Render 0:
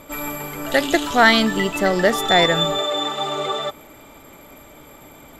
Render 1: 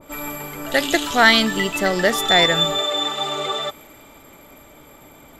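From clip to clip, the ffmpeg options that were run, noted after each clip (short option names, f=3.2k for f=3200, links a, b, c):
-af "adynamicequalizer=threshold=0.0316:dfrequency=1600:dqfactor=0.7:tfrequency=1600:tqfactor=0.7:attack=5:release=100:ratio=0.375:range=2.5:mode=boostabove:tftype=highshelf,volume=-2dB"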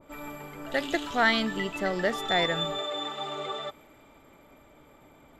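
-af "lowpass=f=2.6k:p=1,volume=-8.5dB"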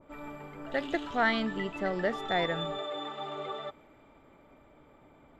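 -af "aemphasis=mode=reproduction:type=75fm,volume=-3dB"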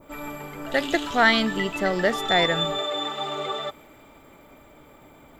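-af "aemphasis=mode=production:type=75fm,volume=8dB"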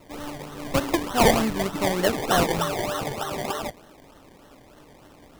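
-af "acrusher=samples=26:mix=1:aa=0.000001:lfo=1:lforange=15.6:lforate=3.3"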